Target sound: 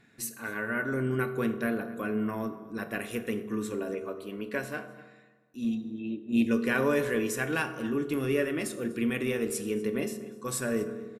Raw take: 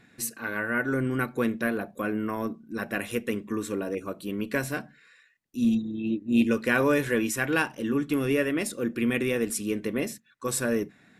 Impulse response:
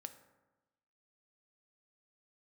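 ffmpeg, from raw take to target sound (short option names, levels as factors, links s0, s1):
-filter_complex "[0:a]asettb=1/sr,asplit=3[s0][s1][s2];[s0]atrim=end=3.944[s3];[s1]atrim=start=3.94:end=6.33,asetpts=PTS-STARTPTS,afade=t=in:d=0.004:c=qsin,afade=t=out:st=2.386:d=0.004:c=qsin,bass=f=250:g=-7,treble=f=4000:g=-6[s4];[s2]atrim=start=6.326[s5];[s3][s4]acrossfade=d=0.004:c1=hsin:c2=qsin[s6];[s6][s5]acrossfade=d=0.004:c1=qsin:c2=hsin,asplit=2[s7][s8];[s8]adelay=244.9,volume=0.126,highshelf=f=4000:g=-5.51[s9];[s7][s9]amix=inputs=2:normalize=0[s10];[1:a]atrim=start_sample=2205,asetrate=33957,aresample=44100[s11];[s10][s11]afir=irnorm=-1:irlink=0"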